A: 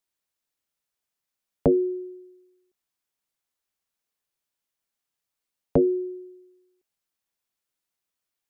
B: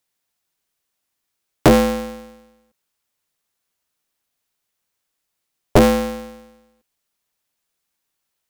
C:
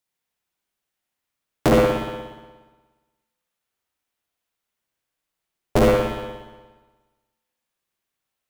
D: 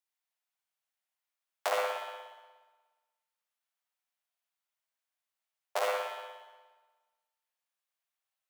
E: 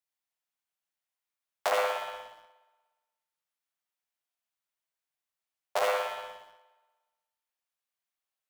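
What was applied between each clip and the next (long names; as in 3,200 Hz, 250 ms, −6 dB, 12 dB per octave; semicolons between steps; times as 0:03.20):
ring modulator with a square carrier 140 Hz; level +8 dB
spring reverb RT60 1.3 s, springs 59 ms, chirp 60 ms, DRR −3 dB; level −7 dB
Butterworth high-pass 590 Hz 36 dB per octave; level −8 dB
leveller curve on the samples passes 1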